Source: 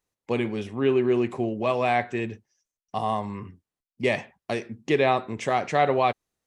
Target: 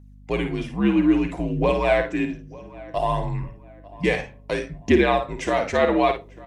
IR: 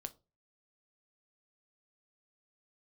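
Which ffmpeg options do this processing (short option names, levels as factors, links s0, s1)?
-filter_complex "[0:a]aphaser=in_gain=1:out_gain=1:delay=3.9:decay=0.44:speed=0.61:type=triangular,asplit=2[s0][s1];[s1]adelay=895,lowpass=f=2200:p=1,volume=0.0944,asplit=2[s2][s3];[s3]adelay=895,lowpass=f=2200:p=1,volume=0.37,asplit=2[s4][s5];[s5]adelay=895,lowpass=f=2200:p=1,volume=0.37[s6];[s0][s2][s4][s6]amix=inputs=4:normalize=0,afreqshift=-67,asplit=2[s7][s8];[1:a]atrim=start_sample=2205,asetrate=41013,aresample=44100,adelay=53[s9];[s8][s9]afir=irnorm=-1:irlink=0,volume=0.596[s10];[s7][s10]amix=inputs=2:normalize=0,aeval=exprs='val(0)+0.00447*(sin(2*PI*50*n/s)+sin(2*PI*2*50*n/s)/2+sin(2*PI*3*50*n/s)/3+sin(2*PI*4*50*n/s)/4+sin(2*PI*5*50*n/s)/5)':c=same,volume=1.19"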